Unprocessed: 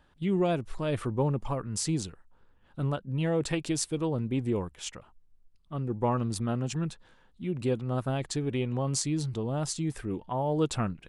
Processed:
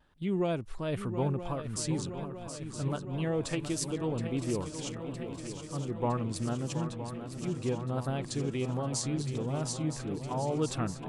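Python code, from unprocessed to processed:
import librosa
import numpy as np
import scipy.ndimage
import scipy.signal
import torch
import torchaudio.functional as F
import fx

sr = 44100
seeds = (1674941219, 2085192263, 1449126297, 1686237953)

y = fx.dmg_crackle(x, sr, seeds[0], per_s=78.0, level_db=-54.0, at=(4.86, 5.75), fade=0.02)
y = fx.echo_swing(y, sr, ms=963, ratio=3, feedback_pct=70, wet_db=-10)
y = fx.vibrato(y, sr, rate_hz=1.4, depth_cents=37.0)
y = F.gain(torch.from_numpy(y), -3.5).numpy()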